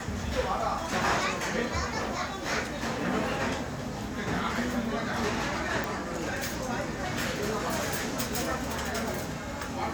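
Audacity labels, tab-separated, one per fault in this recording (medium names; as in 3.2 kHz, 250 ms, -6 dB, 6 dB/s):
5.840000	5.840000	pop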